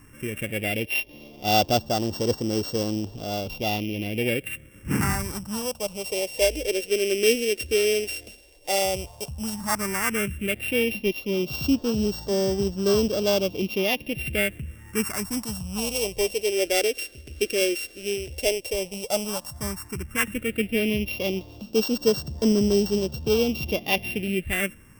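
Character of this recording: a buzz of ramps at a fixed pitch in blocks of 16 samples; phasing stages 4, 0.1 Hz, lowest notch 160–2300 Hz

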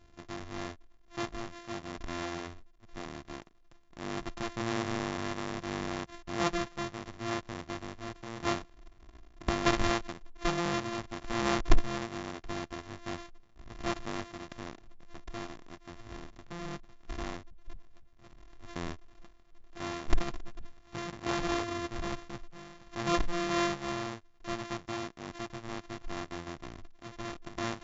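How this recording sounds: a buzz of ramps at a fixed pitch in blocks of 128 samples; AAC

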